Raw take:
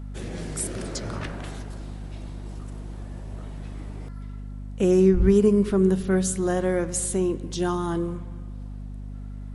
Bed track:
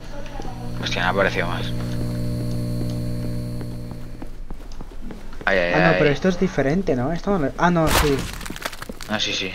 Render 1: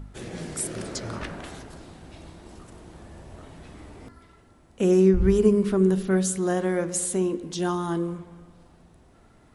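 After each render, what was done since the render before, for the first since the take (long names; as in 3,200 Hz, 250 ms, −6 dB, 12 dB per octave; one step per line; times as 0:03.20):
hum removal 50 Hz, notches 11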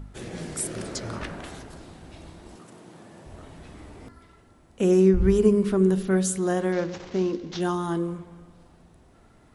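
0:02.56–0:03.26: high-pass filter 130 Hz 24 dB per octave
0:06.72–0:07.61: variable-slope delta modulation 32 kbit/s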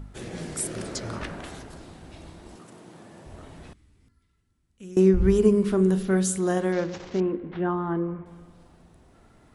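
0:03.73–0:04.97: guitar amp tone stack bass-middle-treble 6-0-2
0:05.65–0:06.58: double-tracking delay 44 ms −14 dB
0:07.20–0:08.26: low-pass filter 2,200 Hz 24 dB per octave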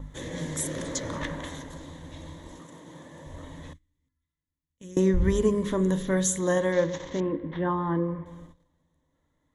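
noise gate −48 dBFS, range −19 dB
EQ curve with evenly spaced ripples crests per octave 1.1, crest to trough 12 dB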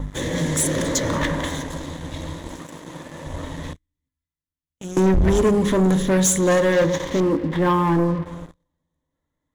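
leveller curve on the samples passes 3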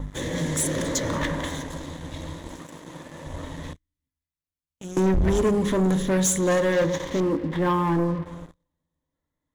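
level −4 dB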